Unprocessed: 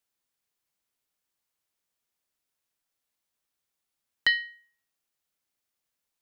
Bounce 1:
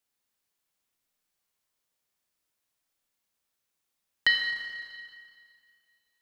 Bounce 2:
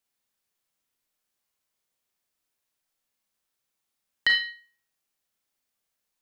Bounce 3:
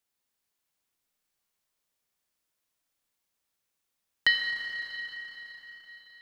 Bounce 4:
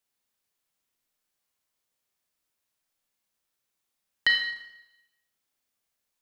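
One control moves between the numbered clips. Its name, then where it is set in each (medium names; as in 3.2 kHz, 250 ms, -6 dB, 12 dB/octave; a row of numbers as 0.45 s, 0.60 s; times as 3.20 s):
Schroeder reverb, RT60: 2.1 s, 0.37 s, 4.5 s, 0.9 s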